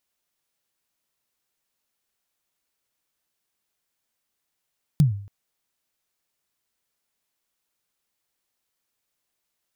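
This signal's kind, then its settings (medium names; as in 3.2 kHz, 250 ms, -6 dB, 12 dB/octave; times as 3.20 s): kick drum length 0.28 s, from 160 Hz, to 100 Hz, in 131 ms, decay 0.52 s, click on, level -10 dB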